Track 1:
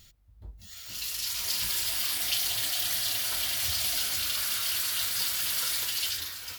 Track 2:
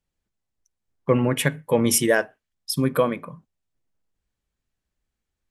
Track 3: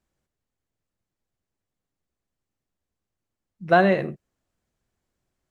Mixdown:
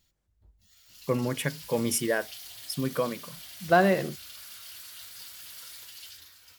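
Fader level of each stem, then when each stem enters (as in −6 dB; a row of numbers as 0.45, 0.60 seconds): −15.5, −8.0, −3.5 decibels; 0.00, 0.00, 0.00 seconds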